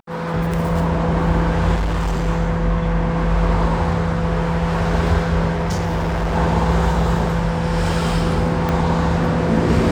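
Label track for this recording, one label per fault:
1.740000	2.280000	clipped -16.5 dBFS
5.520000	6.360000	clipped -17 dBFS
8.690000	8.690000	pop -9 dBFS

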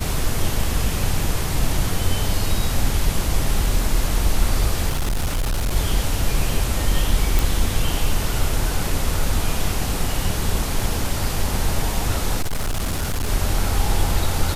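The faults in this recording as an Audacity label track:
4.900000	5.760000	clipped -17.5 dBFS
7.390000	7.390000	pop
12.410000	13.290000	clipped -18.5 dBFS

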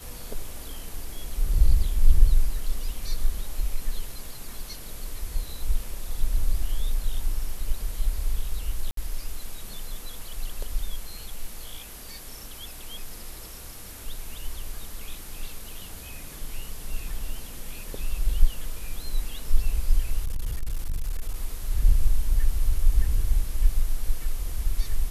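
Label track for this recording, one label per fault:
8.910000	8.970000	gap 63 ms
20.240000	21.360000	clipped -23 dBFS

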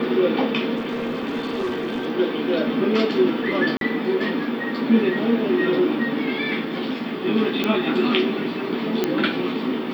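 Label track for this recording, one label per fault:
0.770000	2.070000	clipped -21.5 dBFS
3.770000	3.810000	gap 42 ms
7.640000	7.640000	pop -9 dBFS
9.040000	9.040000	pop -7 dBFS

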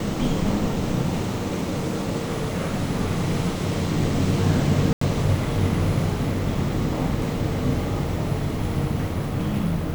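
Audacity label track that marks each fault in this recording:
4.930000	5.010000	gap 84 ms

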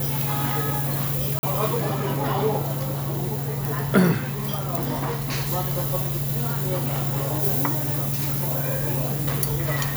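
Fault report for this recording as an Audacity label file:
1.390000	1.430000	gap 41 ms

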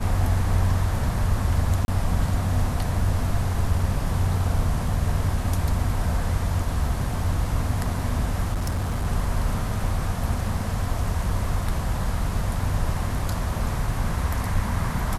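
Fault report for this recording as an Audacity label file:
1.850000	1.880000	gap 31 ms
8.520000	9.070000	clipped -21 dBFS

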